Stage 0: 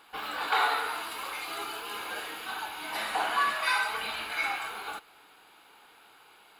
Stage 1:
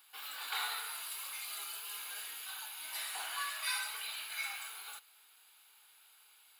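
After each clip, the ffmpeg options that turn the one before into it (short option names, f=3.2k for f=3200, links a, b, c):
-af "aderivative,volume=1dB"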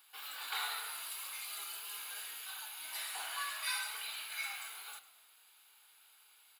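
-filter_complex "[0:a]asplit=6[a][b][c][d][e][f];[b]adelay=104,afreqshift=-57,volume=-16dB[g];[c]adelay=208,afreqshift=-114,volume=-21.8dB[h];[d]adelay=312,afreqshift=-171,volume=-27.7dB[i];[e]adelay=416,afreqshift=-228,volume=-33.5dB[j];[f]adelay=520,afreqshift=-285,volume=-39.4dB[k];[a][g][h][i][j][k]amix=inputs=6:normalize=0,volume=-1dB"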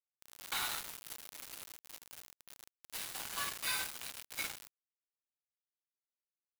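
-af "acrusher=bits=5:mix=0:aa=0.000001"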